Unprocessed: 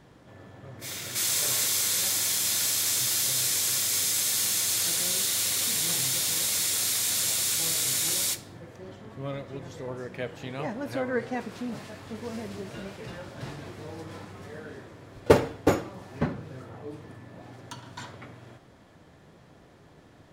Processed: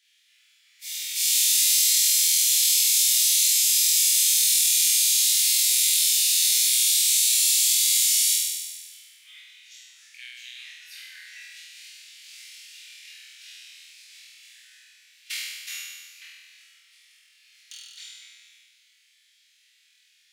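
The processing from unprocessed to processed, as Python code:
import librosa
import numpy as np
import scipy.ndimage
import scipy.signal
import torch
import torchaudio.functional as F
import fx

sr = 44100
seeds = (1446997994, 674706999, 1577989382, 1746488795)

y = scipy.signal.sosfilt(scipy.signal.butter(6, 2300.0, 'highpass', fs=sr, output='sos'), x)
y = fx.room_flutter(y, sr, wall_m=4.2, rt60_s=1.4)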